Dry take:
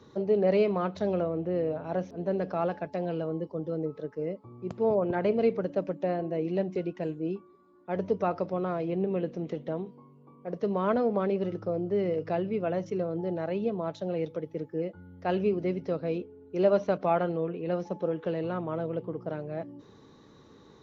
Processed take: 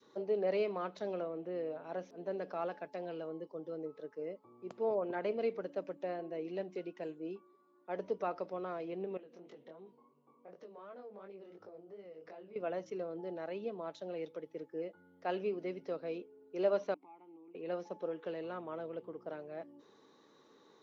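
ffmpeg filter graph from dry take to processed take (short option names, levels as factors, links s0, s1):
-filter_complex "[0:a]asettb=1/sr,asplit=3[s0][s1][s2];[s0]atrim=end=9.174[s3];[s1]atrim=start=9.17:end=12.56,asetpts=PTS-STARTPTS,afade=t=in:d=0.004:c=qsin,afade=t=out:st=3.386:d=0.004:c=qsin,acompressor=threshold=0.0141:ratio=6:attack=3.2:release=140:knee=1:detection=peak,flanger=delay=19.5:depth=5.3:speed=2.8[s4];[s2]atrim=start=12.556[s5];[s3][s4]acrossfade=d=0.004:c1=hsin:c2=qsin[s6];[s6][s5]acrossfade=d=0.004:c1=qsin:c2=hsin,asettb=1/sr,asplit=3[s7][s8][s9];[s7]atrim=end=16.944[s10];[s8]atrim=start=16.94:end=17.55,asetpts=PTS-STARTPTS,afade=t=in:d=0.004:c=qsin,afade=t=out:st=0.606:d=0.004:c=qsin,acompressor=threshold=0.0282:ratio=5:attack=3.2:release=140:knee=1:detection=peak,asplit=3[s11][s12][s13];[s11]bandpass=f=300:t=q:w=8,volume=1[s14];[s12]bandpass=f=870:t=q:w=8,volume=0.501[s15];[s13]bandpass=f=2240:t=q:w=8,volume=0.355[s16];[s14][s15][s16]amix=inputs=3:normalize=0[s17];[s9]atrim=start=17.546[s18];[s10][s17]acrossfade=d=0.004:c1=hsin:c2=qsin[s19];[s19][s18]acrossfade=d=0.004:c1=qsin:c2=hsin,highpass=340,adynamicequalizer=threshold=0.00891:dfrequency=650:dqfactor=0.79:tfrequency=650:tqfactor=0.79:attack=5:release=100:ratio=0.375:range=1.5:mode=cutabove:tftype=bell,volume=0.501"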